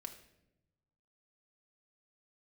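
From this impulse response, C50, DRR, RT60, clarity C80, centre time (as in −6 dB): 10.0 dB, 4.0 dB, non-exponential decay, 12.5 dB, 13 ms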